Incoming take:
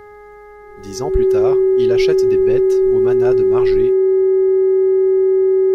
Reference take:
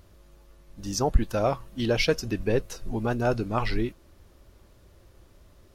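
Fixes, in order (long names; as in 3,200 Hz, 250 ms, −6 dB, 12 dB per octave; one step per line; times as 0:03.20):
hum removal 415.9 Hz, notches 5
notch filter 380 Hz, Q 30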